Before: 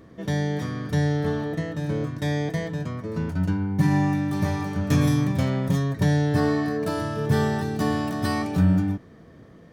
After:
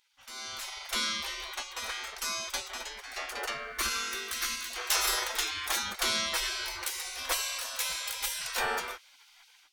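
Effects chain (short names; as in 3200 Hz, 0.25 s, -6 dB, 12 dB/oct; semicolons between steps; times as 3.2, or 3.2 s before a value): spectral gate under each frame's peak -30 dB weak; AGC gain up to 15 dB; spectral gain 3.72–4.7, 390–1000 Hz -12 dB; gain -2.5 dB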